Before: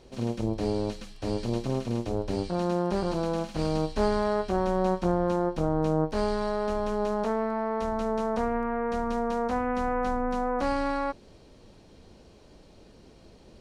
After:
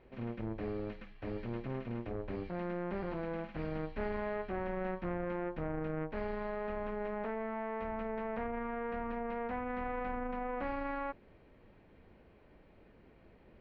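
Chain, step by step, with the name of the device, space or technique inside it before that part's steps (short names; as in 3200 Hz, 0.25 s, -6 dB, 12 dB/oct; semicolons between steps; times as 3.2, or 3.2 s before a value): overdriven synthesiser ladder filter (soft clip -22.5 dBFS, distortion -12 dB; ladder low-pass 2500 Hz, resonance 45%); gain +1 dB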